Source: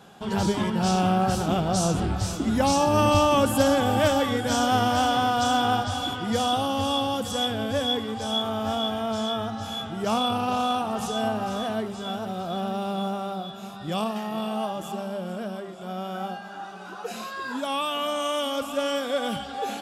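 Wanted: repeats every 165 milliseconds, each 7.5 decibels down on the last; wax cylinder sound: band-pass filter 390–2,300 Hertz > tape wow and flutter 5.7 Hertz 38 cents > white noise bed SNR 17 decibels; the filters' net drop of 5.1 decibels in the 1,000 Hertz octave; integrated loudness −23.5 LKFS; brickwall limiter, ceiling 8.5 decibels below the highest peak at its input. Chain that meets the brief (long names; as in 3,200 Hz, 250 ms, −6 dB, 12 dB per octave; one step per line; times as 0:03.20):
parametric band 1,000 Hz −7 dB
brickwall limiter −16 dBFS
band-pass filter 390–2,300 Hz
repeating echo 165 ms, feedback 42%, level −7.5 dB
tape wow and flutter 5.7 Hz 38 cents
white noise bed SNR 17 dB
level +8 dB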